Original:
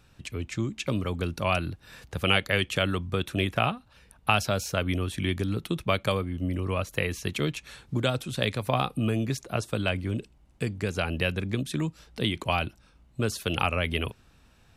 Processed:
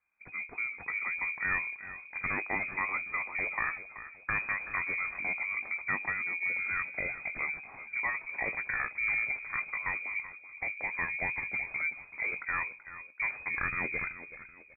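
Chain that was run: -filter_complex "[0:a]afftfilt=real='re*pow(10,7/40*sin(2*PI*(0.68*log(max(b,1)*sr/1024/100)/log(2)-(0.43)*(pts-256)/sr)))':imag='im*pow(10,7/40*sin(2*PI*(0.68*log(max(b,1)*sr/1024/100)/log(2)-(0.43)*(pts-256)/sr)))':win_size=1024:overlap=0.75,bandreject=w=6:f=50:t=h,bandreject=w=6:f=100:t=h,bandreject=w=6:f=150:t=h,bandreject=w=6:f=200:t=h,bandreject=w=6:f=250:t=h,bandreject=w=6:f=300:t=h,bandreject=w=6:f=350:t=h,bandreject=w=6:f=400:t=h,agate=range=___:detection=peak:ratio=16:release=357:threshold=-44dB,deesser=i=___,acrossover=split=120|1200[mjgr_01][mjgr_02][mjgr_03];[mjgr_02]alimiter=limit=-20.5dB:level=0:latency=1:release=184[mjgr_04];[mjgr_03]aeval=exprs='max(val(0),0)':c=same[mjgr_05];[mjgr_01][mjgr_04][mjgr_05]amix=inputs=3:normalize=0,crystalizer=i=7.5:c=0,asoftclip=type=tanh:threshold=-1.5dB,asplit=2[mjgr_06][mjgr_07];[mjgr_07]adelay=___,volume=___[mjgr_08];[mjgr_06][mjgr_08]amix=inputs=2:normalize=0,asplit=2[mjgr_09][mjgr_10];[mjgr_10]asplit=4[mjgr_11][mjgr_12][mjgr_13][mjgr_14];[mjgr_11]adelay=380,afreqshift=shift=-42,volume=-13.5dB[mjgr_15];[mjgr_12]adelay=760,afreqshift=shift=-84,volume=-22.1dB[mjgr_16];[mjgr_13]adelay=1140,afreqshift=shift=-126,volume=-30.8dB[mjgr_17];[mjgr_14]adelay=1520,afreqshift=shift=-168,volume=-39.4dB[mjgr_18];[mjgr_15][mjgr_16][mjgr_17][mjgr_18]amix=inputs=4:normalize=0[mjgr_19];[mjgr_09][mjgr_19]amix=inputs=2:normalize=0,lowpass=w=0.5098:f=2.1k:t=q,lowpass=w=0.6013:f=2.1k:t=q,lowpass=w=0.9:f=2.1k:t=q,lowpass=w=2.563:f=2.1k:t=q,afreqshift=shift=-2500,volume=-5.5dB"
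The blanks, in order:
-17dB, 0.6, 19, -13.5dB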